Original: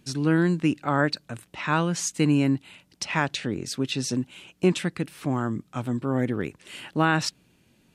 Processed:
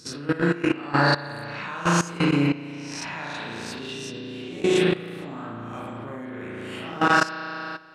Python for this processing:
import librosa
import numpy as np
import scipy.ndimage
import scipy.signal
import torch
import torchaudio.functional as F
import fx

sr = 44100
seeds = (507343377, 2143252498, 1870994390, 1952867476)

y = fx.spec_swells(x, sr, rise_s=0.68)
y = fx.high_shelf(y, sr, hz=7100.0, db=-2.5)
y = fx.rev_spring(y, sr, rt60_s=2.1, pass_ms=(35,), chirp_ms=25, drr_db=-5.5)
y = fx.level_steps(y, sr, step_db=16)
y = fx.low_shelf(y, sr, hz=380.0, db=-5.5)